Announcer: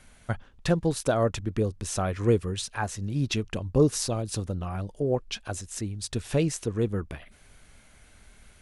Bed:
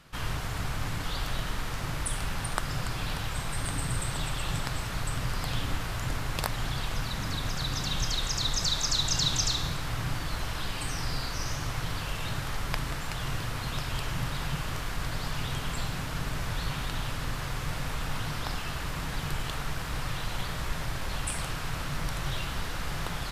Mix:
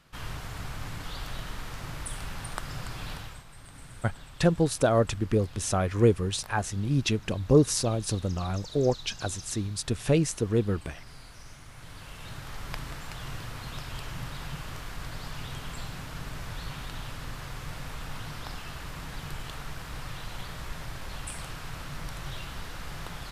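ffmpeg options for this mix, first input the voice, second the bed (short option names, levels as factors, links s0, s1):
-filter_complex "[0:a]adelay=3750,volume=1.19[s0];[1:a]volume=2.11,afade=t=out:st=3.12:d=0.32:silence=0.251189,afade=t=in:st=11.7:d=1.03:silence=0.266073[s1];[s0][s1]amix=inputs=2:normalize=0"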